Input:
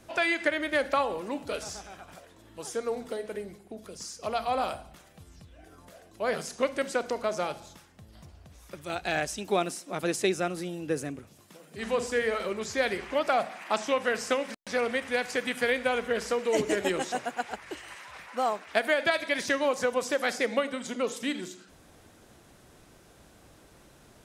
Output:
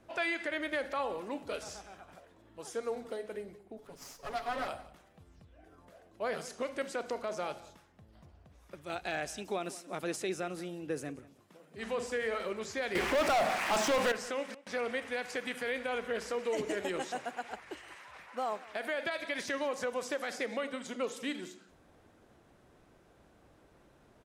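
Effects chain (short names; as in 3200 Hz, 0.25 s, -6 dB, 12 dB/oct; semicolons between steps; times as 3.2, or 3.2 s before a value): 3.78–4.68 minimum comb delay 7.1 ms; tone controls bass -3 dB, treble -3 dB; 12.95–14.12 sample leveller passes 5; limiter -20 dBFS, peak gain reduction 10.5 dB; echo 0.181 s -19 dB; mismatched tape noise reduction decoder only; gain -4.5 dB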